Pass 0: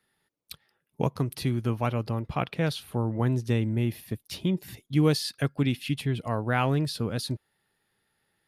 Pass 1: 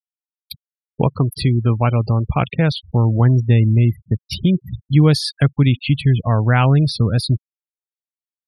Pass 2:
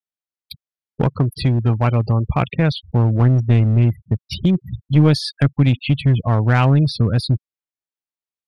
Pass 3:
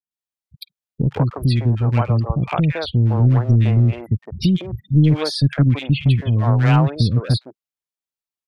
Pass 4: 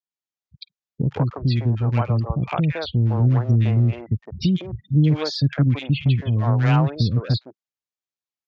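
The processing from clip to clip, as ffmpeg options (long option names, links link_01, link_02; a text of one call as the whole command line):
ffmpeg -i in.wav -filter_complex "[0:a]asubboost=boost=3:cutoff=160,afftfilt=real='re*gte(hypot(re,im),0.0178)':imag='im*gte(hypot(re,im),0.0178)':win_size=1024:overlap=0.75,asplit=2[link_01][link_02];[link_02]acompressor=threshold=-30dB:ratio=6,volume=1dB[link_03];[link_01][link_03]amix=inputs=2:normalize=0,volume=6dB" out.wav
ffmpeg -i in.wav -af "aeval=exprs='clip(val(0),-1,0.237)':channel_layout=same,highshelf=frequency=7900:gain=-10" out.wav
ffmpeg -i in.wav -filter_complex "[0:a]acrossover=split=390|1600[link_01][link_02][link_03];[link_03]adelay=110[link_04];[link_02]adelay=160[link_05];[link_01][link_05][link_04]amix=inputs=3:normalize=0" out.wav
ffmpeg -i in.wav -af "highpass=45,aresample=16000,aresample=44100,volume=-3dB" out.wav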